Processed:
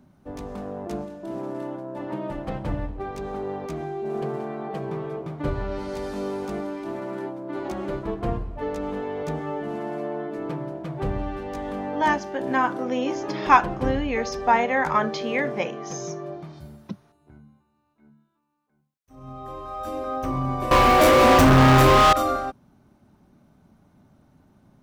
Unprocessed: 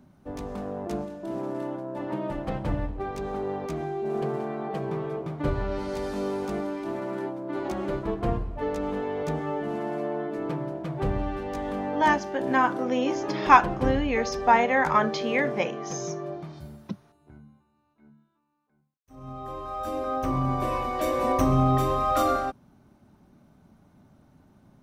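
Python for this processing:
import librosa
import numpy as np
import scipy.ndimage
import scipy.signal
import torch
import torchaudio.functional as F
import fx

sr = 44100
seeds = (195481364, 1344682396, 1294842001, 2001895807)

y = fx.leveller(x, sr, passes=5, at=(20.71, 22.13))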